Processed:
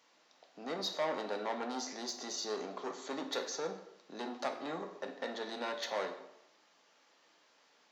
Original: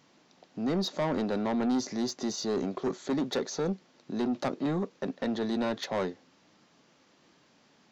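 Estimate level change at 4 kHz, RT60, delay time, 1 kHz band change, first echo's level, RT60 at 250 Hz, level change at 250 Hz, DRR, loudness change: -2.0 dB, 0.80 s, no echo, -3.0 dB, no echo, 0.80 s, -15.0 dB, 4.0 dB, -7.5 dB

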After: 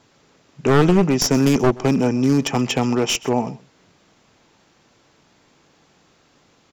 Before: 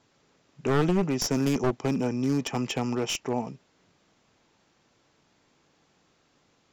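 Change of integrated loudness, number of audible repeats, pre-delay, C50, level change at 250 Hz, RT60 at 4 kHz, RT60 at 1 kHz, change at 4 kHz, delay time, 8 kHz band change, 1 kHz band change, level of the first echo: +9.0 dB, 1, no reverb, no reverb, +9.0 dB, no reverb, no reverb, +9.0 dB, 128 ms, +9.0 dB, +9.0 dB, -21.0 dB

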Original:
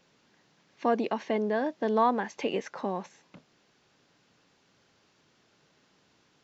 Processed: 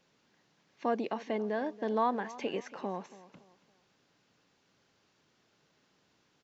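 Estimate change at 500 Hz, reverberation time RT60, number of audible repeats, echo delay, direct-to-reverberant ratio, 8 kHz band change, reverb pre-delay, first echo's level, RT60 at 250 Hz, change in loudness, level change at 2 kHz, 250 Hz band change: -5.0 dB, no reverb, 2, 280 ms, no reverb, no reading, no reverb, -18.0 dB, no reverb, -5.0 dB, -5.0 dB, -5.0 dB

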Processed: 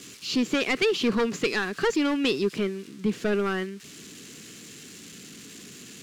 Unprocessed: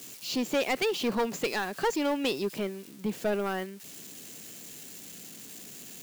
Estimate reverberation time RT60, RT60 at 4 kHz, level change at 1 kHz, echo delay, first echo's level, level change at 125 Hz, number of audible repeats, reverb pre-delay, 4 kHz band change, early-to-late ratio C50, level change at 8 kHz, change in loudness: no reverb, no reverb, -0.5 dB, no echo, no echo, +6.0 dB, no echo, no reverb, +4.5 dB, no reverb, +0.5 dB, +4.0 dB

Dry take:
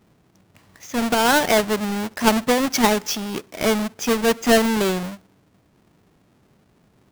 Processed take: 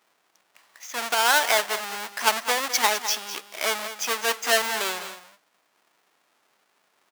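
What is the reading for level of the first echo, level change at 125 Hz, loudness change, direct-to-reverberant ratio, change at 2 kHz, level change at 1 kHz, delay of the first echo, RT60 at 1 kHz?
-12.0 dB, under -25 dB, -3.5 dB, no reverb, 0.0 dB, -3.0 dB, 206 ms, no reverb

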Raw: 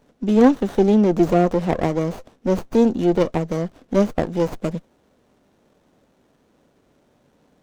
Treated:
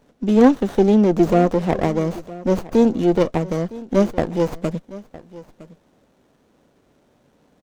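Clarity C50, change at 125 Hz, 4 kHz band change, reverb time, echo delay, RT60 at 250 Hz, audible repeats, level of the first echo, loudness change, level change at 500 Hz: no reverb, +1.0 dB, +1.0 dB, no reverb, 961 ms, no reverb, 1, -19.0 dB, +1.0 dB, +1.0 dB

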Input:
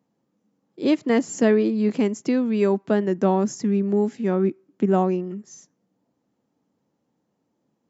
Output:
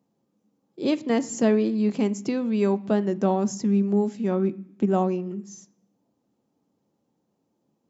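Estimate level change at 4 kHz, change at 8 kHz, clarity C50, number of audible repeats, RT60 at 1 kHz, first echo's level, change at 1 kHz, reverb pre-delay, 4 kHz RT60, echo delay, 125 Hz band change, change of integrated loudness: -1.0 dB, no reading, 19.5 dB, no echo, 0.65 s, no echo, -2.5 dB, 3 ms, 0.85 s, no echo, -1.0 dB, -2.5 dB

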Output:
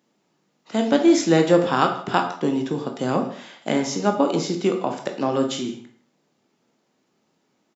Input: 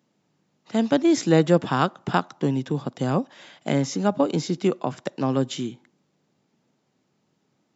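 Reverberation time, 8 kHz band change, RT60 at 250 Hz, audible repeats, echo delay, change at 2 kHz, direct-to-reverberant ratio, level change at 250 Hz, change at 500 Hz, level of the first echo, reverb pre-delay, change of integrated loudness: 0.55 s, no reading, 0.55 s, 1, 156 ms, +3.0 dB, 3.5 dB, +1.5 dB, +3.0 dB, -19.0 dB, 15 ms, +2.0 dB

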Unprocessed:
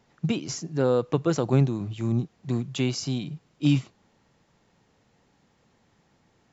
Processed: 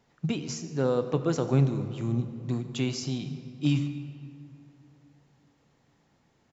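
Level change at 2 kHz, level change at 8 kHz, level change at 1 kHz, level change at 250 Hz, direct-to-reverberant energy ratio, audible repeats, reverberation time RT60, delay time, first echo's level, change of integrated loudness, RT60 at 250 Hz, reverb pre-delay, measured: -3.0 dB, no reading, -3.0 dB, -2.5 dB, 8.5 dB, 1, 2.7 s, 144 ms, -19.5 dB, -3.0 dB, 3.0 s, 3 ms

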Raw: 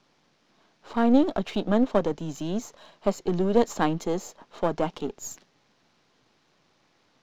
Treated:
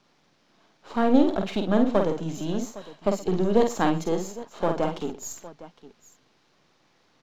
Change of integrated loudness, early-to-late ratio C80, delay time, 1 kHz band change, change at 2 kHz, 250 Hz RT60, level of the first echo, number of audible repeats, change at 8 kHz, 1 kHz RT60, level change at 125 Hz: +1.0 dB, no reverb, 49 ms, +1.5 dB, +1.5 dB, no reverb, -5.0 dB, 3, +1.5 dB, no reverb, +1.5 dB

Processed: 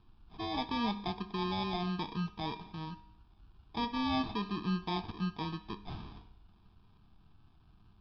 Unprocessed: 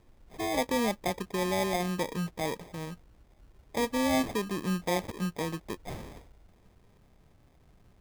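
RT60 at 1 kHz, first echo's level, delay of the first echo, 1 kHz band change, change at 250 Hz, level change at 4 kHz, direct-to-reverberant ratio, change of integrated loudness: 0.70 s, no echo, no echo, -2.5 dB, -3.5 dB, -1.5 dB, 10.0 dB, -5.0 dB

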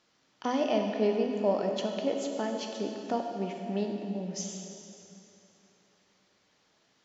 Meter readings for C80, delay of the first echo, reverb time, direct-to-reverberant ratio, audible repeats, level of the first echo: 4.5 dB, no echo, 2.9 s, 2.5 dB, no echo, no echo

